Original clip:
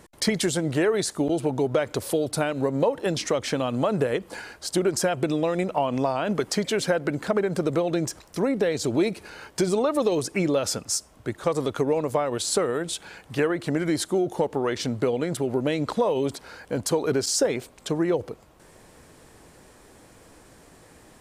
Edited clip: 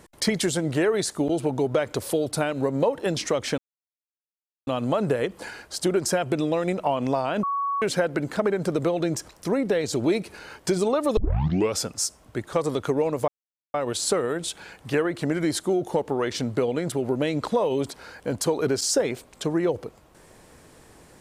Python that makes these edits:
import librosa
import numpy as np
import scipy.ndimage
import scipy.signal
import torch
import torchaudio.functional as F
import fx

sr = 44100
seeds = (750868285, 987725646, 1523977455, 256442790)

y = fx.edit(x, sr, fx.insert_silence(at_s=3.58, length_s=1.09),
    fx.bleep(start_s=6.34, length_s=0.39, hz=1120.0, db=-23.0),
    fx.tape_start(start_s=10.08, length_s=0.61),
    fx.insert_silence(at_s=12.19, length_s=0.46), tone=tone)